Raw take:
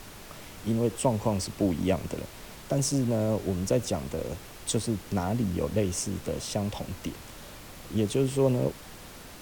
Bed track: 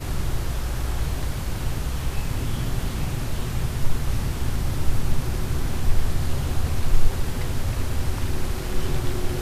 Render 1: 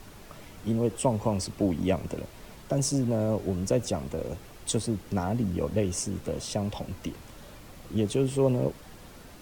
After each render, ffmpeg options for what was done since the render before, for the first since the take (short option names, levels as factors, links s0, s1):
-af "afftdn=nr=6:nf=-46"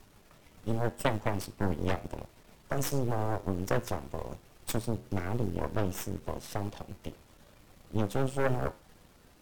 -af "aeval=exprs='0.299*(cos(1*acos(clip(val(0)/0.299,-1,1)))-cos(1*PI/2))+0.0531*(cos(3*acos(clip(val(0)/0.299,-1,1)))-cos(3*PI/2))+0.075*(cos(4*acos(clip(val(0)/0.299,-1,1)))-cos(4*PI/2))+0.119*(cos(6*acos(clip(val(0)/0.299,-1,1)))-cos(6*PI/2))':c=same,flanger=delay=9.8:depth=3.1:regen=-83:speed=0.92:shape=triangular"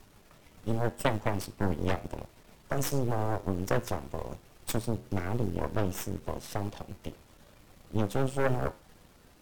-af "volume=1.12"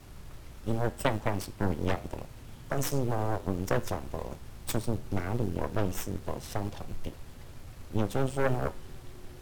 -filter_complex "[1:a]volume=0.0841[s0];[0:a][s0]amix=inputs=2:normalize=0"